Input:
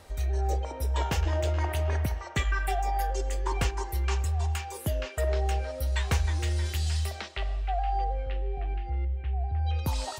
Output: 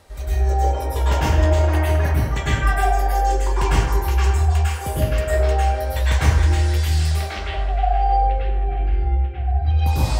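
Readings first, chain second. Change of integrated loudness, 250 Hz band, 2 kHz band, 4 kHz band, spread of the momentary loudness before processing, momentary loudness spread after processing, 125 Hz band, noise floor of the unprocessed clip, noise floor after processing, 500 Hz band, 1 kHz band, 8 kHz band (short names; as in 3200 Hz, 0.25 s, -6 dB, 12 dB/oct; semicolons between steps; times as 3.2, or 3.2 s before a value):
+10.0 dB, +11.0 dB, +9.0 dB, +7.0 dB, 5 LU, 5 LU, +10.5 dB, -40 dBFS, -27 dBFS, +9.5 dB, +11.0 dB, +6.5 dB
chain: plate-style reverb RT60 1 s, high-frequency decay 0.45×, pre-delay 90 ms, DRR -9 dB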